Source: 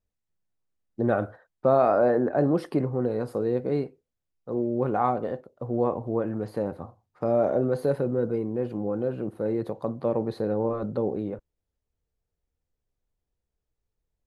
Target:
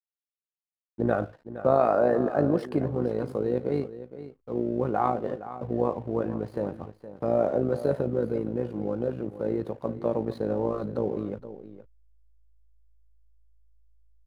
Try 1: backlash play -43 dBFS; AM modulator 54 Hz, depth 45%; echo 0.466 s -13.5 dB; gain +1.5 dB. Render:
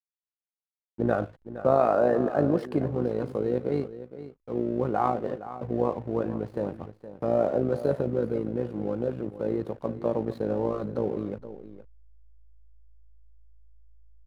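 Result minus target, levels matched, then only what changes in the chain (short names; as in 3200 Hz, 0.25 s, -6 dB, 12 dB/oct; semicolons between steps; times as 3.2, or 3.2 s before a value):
backlash: distortion +6 dB
change: backlash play -49 dBFS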